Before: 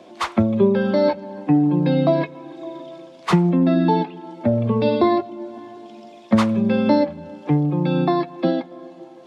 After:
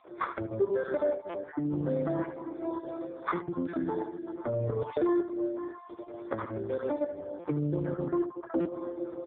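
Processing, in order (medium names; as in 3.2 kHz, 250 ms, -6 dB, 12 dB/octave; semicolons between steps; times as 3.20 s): random holes in the spectrogram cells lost 24%; recorder AGC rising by 6.7 dB/s; 0.59–1.31 s: gate with hold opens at -33 dBFS; 7.92–8.74 s: low-pass 1.2 kHz 24 dB/octave; compression 6:1, threshold -20 dBFS, peak gain reduction 10 dB; saturation -16 dBFS, distortion -20 dB; static phaser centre 770 Hz, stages 6; 6.50–7.33 s: whistle 450 Hz -60 dBFS; doubling 15 ms -11 dB; delay 75 ms -10.5 dB; buffer glitch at 1.29/3.68/7.39/8.60 s, samples 256, times 8; AMR-NB 5.15 kbps 8 kHz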